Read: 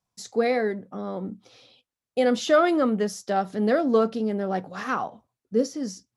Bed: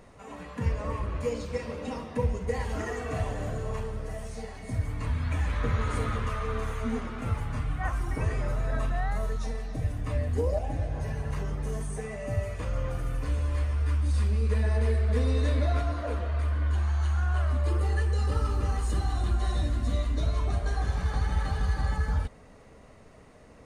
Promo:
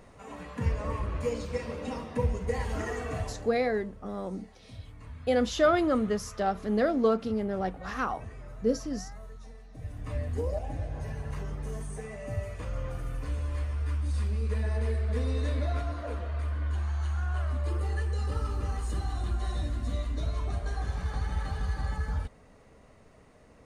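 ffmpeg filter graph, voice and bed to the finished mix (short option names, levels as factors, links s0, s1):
-filter_complex "[0:a]adelay=3100,volume=0.631[s0];[1:a]volume=3.35,afade=t=out:st=3.03:d=0.5:silence=0.188365,afade=t=in:st=9.71:d=0.46:silence=0.281838[s1];[s0][s1]amix=inputs=2:normalize=0"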